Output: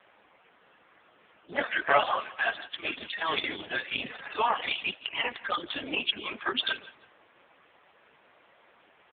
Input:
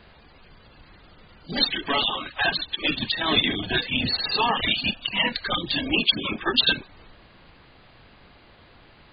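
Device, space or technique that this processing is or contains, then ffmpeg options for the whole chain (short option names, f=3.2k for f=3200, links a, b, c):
telephone: -filter_complex "[0:a]asplit=3[a][b][c];[a]afade=t=out:st=1.57:d=0.02[d];[b]equalizer=f=100:t=o:w=0.67:g=5,equalizer=f=630:t=o:w=0.67:g=12,equalizer=f=1.6k:t=o:w=0.67:g=12,equalizer=f=4k:t=o:w=0.67:g=-6,afade=t=in:st=1.57:d=0.02,afade=t=out:st=2.19:d=0.02[e];[c]afade=t=in:st=2.19:d=0.02[f];[d][e][f]amix=inputs=3:normalize=0,aecho=1:1:165|330:0.112|0.0224,adynamicequalizer=threshold=0.00501:dfrequency=320:dqfactor=4.8:tfrequency=320:tqfactor=4.8:attack=5:release=100:ratio=0.375:range=2.5:mode=cutabove:tftype=bell,highpass=380,lowpass=3.2k" -ar 8000 -c:a libopencore_amrnb -b:a 5150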